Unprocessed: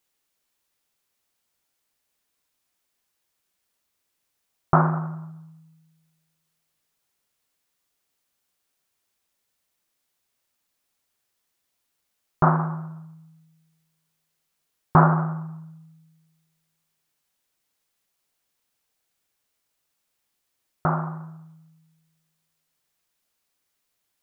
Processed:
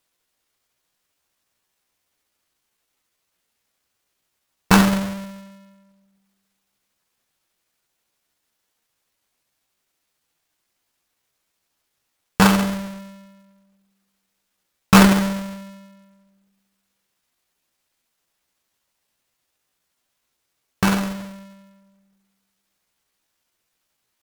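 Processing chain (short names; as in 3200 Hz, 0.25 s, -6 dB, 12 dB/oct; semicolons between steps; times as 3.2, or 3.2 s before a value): half-waves squared off; de-hum 354.8 Hz, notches 32; in parallel at -8 dB: short-mantissa float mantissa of 2-bit; on the sum: pitch shift +3.5 st; gain -2.5 dB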